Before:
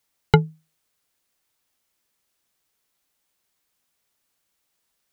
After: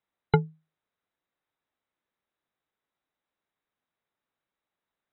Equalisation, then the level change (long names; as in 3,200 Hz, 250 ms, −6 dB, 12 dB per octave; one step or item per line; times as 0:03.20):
linear-phase brick-wall low-pass 4,000 Hz
low-shelf EQ 80 Hz −8 dB
parametric band 3,000 Hz −9 dB 0.87 octaves
−5.0 dB